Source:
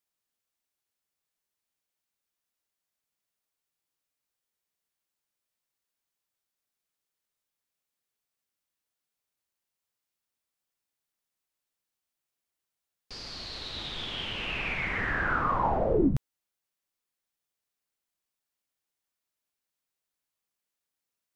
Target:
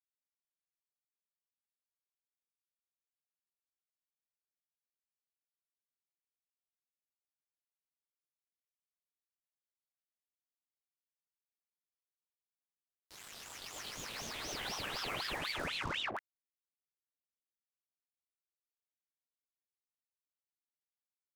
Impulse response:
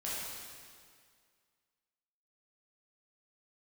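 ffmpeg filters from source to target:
-af "highpass=62,acompressor=threshold=-27dB:ratio=6,acrusher=bits=5:mix=0:aa=0.5,flanger=delay=19:depth=3.4:speed=1.5,aeval=exprs='val(0)*sin(2*PI*1900*n/s+1900*0.8/4*sin(2*PI*4*n/s))':c=same,volume=-2.5dB"

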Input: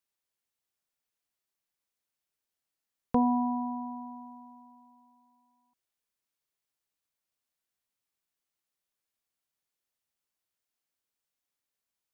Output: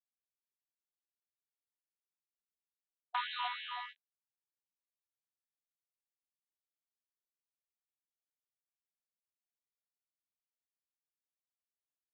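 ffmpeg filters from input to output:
-af "aeval=exprs='val(0)+0.000501*(sin(2*PI*50*n/s)+sin(2*PI*2*50*n/s)/2+sin(2*PI*3*50*n/s)/3+sin(2*PI*4*50*n/s)/4+sin(2*PI*5*50*n/s)/5)':c=same,aresample=8000,acrusher=bits=3:dc=4:mix=0:aa=0.000001,aresample=44100,agate=range=-30dB:threshold=-34dB:ratio=16:detection=peak,afftfilt=real='re*gte(b*sr/1024,720*pow(1600/720,0.5+0.5*sin(2*PI*3.1*pts/sr)))':imag='im*gte(b*sr/1024,720*pow(1600/720,0.5+0.5*sin(2*PI*3.1*pts/sr)))':win_size=1024:overlap=0.75,volume=1dB"

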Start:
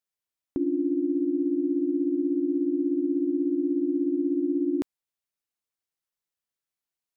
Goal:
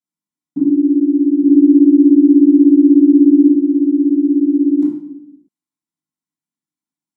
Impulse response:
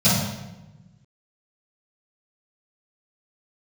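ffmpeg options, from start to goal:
-filter_complex "[0:a]asettb=1/sr,asplit=3[a][b][c];[a]atrim=end=1.424[d];[b]atrim=start=1.42:end=3.47,asetpts=PTS-STARTPTS,afade=t=in:d=0.004:c=qsin,afade=t=out:st=2.046:d=0.004:c=qsin,acontrast=23[e];[c]atrim=start=3.466[f];[d][e]acrossfade=d=0.004:c1=hsin:c2=qsin[g];[g][f]acrossfade=d=0.004:c1=qsin:c2=hsin[h];[1:a]atrim=start_sample=2205,asetrate=66150,aresample=44100[i];[h][i]afir=irnorm=-1:irlink=0,volume=-18dB"

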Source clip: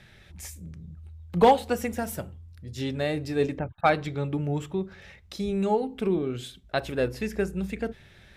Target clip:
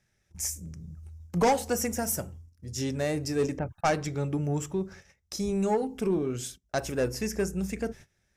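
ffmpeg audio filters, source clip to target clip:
-af "agate=range=-20dB:threshold=-45dB:ratio=16:detection=peak,asoftclip=type=tanh:threshold=-18dB,highshelf=f=4.7k:t=q:w=3:g=7"

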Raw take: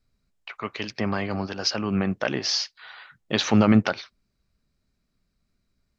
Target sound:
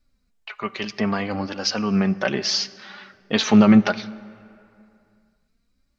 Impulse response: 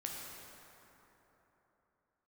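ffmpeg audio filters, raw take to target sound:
-filter_complex "[0:a]flanger=delay=3.4:depth=1.9:regen=19:speed=0.67:shape=triangular,asplit=2[a][b];[1:a]atrim=start_sample=2205,asetrate=61740,aresample=44100[c];[b][c]afir=irnorm=-1:irlink=0,volume=-12dB[d];[a][d]amix=inputs=2:normalize=0,volume=5dB"

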